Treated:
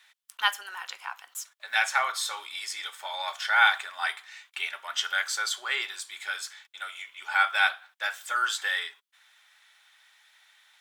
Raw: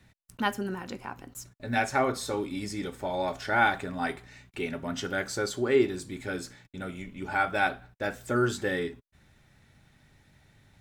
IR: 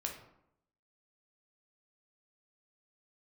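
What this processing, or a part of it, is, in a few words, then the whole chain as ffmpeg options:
headphones lying on a table: -af "highpass=f=1k:w=0.5412,highpass=f=1k:w=1.3066,equalizer=f=3.3k:t=o:w=0.29:g=7.5,volume=5.5dB"

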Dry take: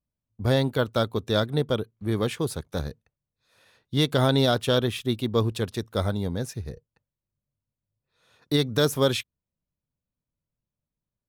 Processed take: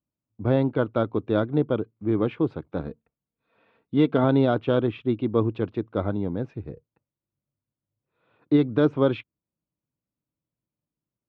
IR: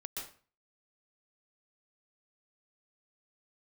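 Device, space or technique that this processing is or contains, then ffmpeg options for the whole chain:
bass cabinet: -filter_complex "[0:a]highpass=74,equalizer=f=79:t=q:w=4:g=-7,equalizer=f=310:t=q:w=4:g=9,equalizer=f=1.8k:t=q:w=4:g=-9,lowpass=f=2.4k:w=0.5412,lowpass=f=2.4k:w=1.3066,asettb=1/sr,asplit=3[a][b][c];[a]atrim=end=2.804[d];[b]atrim=start=2.8:end=4.24,asetpts=PTS-STARTPTS,afade=t=in:d=0.004:c=qsin,afade=t=out:st=1.436:d=0.004:c=qsin,aecho=1:1:4.4:0.47,atrim=end_sample=63504[e];[c]atrim=start=4.236[f];[d][e]acrossfade=d=0.004:c1=hsin:c2=qsin[g];[g][f]acrossfade=d=0.004:c1=qsin:c2=hsin"

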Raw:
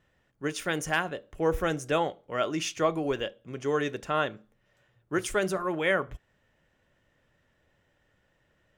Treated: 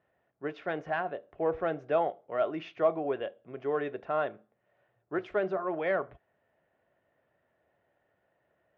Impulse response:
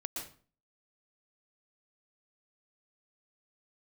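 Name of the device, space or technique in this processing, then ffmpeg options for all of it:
overdrive pedal into a guitar cabinet: -filter_complex "[0:a]asplit=2[a][b];[b]highpass=f=720:p=1,volume=9dB,asoftclip=type=tanh:threshold=-12dB[c];[a][c]amix=inputs=2:normalize=0,lowpass=f=1k:p=1,volume=-6dB,highpass=76,equalizer=f=390:t=q:w=4:g=4,equalizer=f=680:t=q:w=4:g=10,equalizer=f=3.1k:t=q:w=4:g=-3,lowpass=f=3.7k:w=0.5412,lowpass=f=3.7k:w=1.3066,volume=-5dB"

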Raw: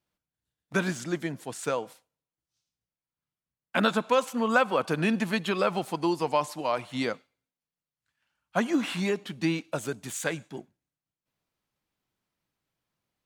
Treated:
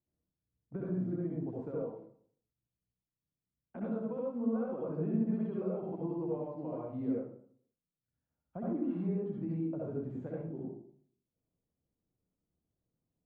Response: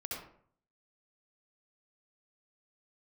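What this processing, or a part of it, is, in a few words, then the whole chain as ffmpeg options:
television next door: -filter_complex "[0:a]acompressor=threshold=-31dB:ratio=4,lowpass=420[a];[1:a]atrim=start_sample=2205[b];[a][b]afir=irnorm=-1:irlink=0,volume=1dB"

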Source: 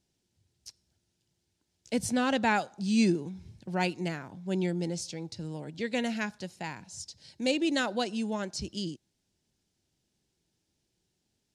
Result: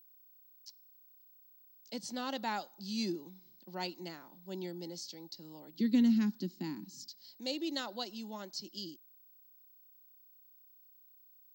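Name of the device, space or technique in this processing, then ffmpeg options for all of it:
old television with a line whistle: -filter_complex "[0:a]asettb=1/sr,asplit=3[a][b][c];[a]atrim=end=5.804[d];[b]atrim=start=5.8:end=7.08,asetpts=PTS-STARTPTS,afade=t=in:d=0.004:c=qsin,afade=t=out:st=1.276:d=0.004:c=qsin,lowshelf=f=420:t=q:w=3:g=13.5[e];[c]atrim=start=7.076[f];[d][e]acrossfade=d=0.004:c1=hsin:c2=qsin[g];[g][f]acrossfade=d=0.004:c1=qsin:c2=hsin,highpass=f=220:w=0.5412,highpass=f=220:w=1.3066,equalizer=f=250:t=q:w=4:g=-5,equalizer=f=450:t=q:w=4:g=-8,equalizer=f=670:t=q:w=4:g=-5,equalizer=f=1.6k:t=q:w=4:g=-8,equalizer=f=2.4k:t=q:w=4:g=-9,equalizer=f=4.5k:t=q:w=4:g=7,lowpass=f=6.8k:w=0.5412,lowpass=f=6.8k:w=1.3066,aeval=exprs='val(0)+0.00251*sin(2*PI*15734*n/s)':c=same,volume=-6.5dB"

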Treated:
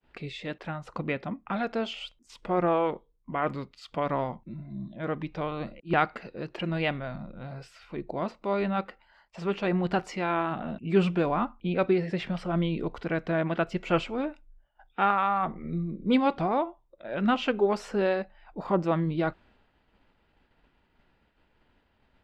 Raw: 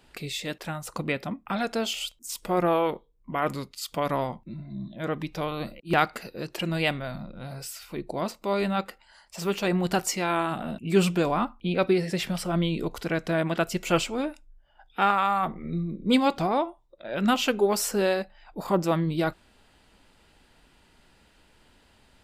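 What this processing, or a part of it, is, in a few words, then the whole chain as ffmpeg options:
hearing-loss simulation: -af "lowpass=2.6k,agate=range=-33dB:threshold=-54dB:ratio=3:detection=peak,volume=-1.5dB"

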